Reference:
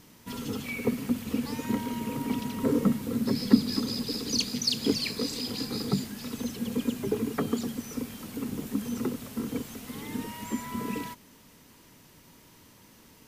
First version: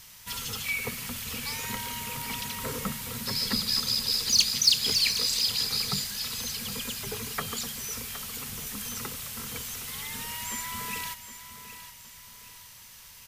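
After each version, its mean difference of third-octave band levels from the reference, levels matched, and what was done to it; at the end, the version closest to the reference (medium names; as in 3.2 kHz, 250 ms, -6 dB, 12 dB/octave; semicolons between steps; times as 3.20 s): 8.0 dB: amplifier tone stack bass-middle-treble 10-0-10; in parallel at -5.5 dB: hard clipper -32.5 dBFS, distortion -8 dB; on the sum: feedback delay 766 ms, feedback 36%, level -12 dB; trim +6.5 dB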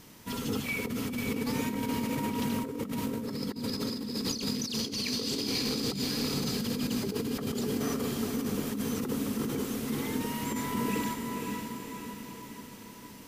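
5.5 dB: hum notches 60/120/180/240/300 Hz; on a send: echo that smears into a reverb 526 ms, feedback 56%, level -4.5 dB; on the sum: compressor with a negative ratio -32 dBFS, ratio -1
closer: second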